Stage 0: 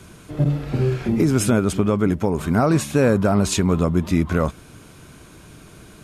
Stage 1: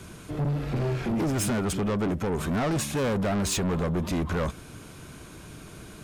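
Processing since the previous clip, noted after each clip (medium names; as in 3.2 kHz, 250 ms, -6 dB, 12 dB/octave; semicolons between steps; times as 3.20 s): saturation -23.5 dBFS, distortion -6 dB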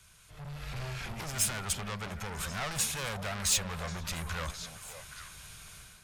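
amplifier tone stack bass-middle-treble 10-0-10; level rider gain up to 11 dB; repeats whose band climbs or falls 272 ms, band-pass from 240 Hz, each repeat 1.4 oct, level -3.5 dB; trim -8 dB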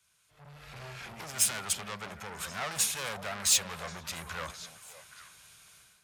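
high-pass 280 Hz 6 dB/octave; three bands expanded up and down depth 40%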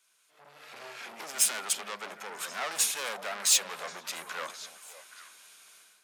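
high-pass 260 Hz 24 dB/octave; trim +1.5 dB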